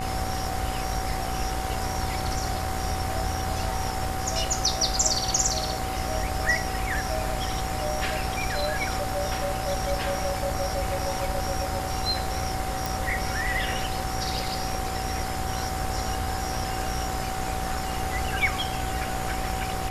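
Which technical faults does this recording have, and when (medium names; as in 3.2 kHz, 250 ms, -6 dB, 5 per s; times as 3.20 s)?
buzz 60 Hz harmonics 37 -34 dBFS
whine 760 Hz -32 dBFS
12.86 s: pop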